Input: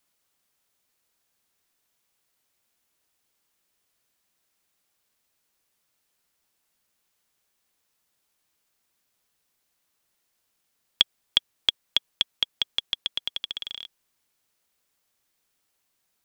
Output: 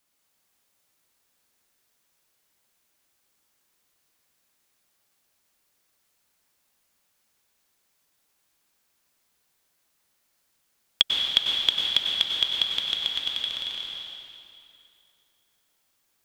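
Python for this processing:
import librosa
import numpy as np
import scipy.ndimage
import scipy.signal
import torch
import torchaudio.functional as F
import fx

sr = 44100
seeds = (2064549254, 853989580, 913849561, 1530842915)

y = fx.rev_plate(x, sr, seeds[0], rt60_s=2.7, hf_ratio=0.85, predelay_ms=85, drr_db=-1.5)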